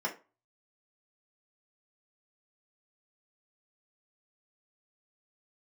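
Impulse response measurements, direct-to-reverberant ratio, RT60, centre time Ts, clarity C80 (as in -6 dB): -2.5 dB, 0.30 s, 13 ms, 19.5 dB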